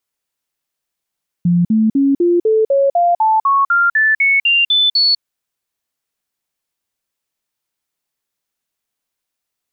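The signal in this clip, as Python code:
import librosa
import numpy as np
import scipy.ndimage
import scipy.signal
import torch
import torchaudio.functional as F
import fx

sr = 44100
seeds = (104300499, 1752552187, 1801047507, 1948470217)

y = fx.stepped_sweep(sr, from_hz=174.0, direction='up', per_octave=3, tones=15, dwell_s=0.2, gap_s=0.05, level_db=-9.5)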